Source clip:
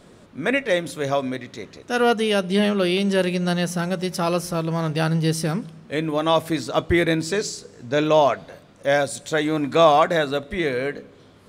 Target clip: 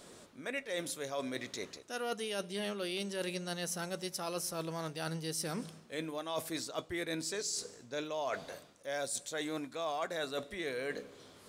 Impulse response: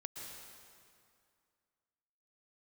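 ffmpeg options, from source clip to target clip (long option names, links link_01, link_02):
-af "bass=frequency=250:gain=-8,treble=frequency=4000:gain=9,areverse,acompressor=threshold=-31dB:ratio=6,areverse,volume=-4.5dB"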